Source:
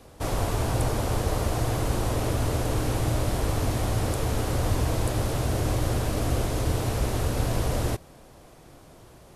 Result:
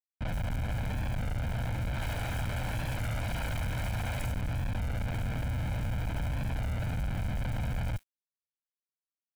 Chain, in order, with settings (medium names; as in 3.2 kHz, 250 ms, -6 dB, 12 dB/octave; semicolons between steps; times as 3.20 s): 1.94–4.27 s: treble shelf 3 kHz +11 dB; Schmitt trigger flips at -28 dBFS; comb 1.3 ms, depth 60%; bands offset in time lows, highs 70 ms, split 5.2 kHz; crossover distortion -33 dBFS; FFT filter 160 Hz 0 dB, 750 Hz -5 dB, 2.3 kHz +1 dB, 5.1 kHz -8 dB; warped record 33 1/3 rpm, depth 100 cents; trim -5 dB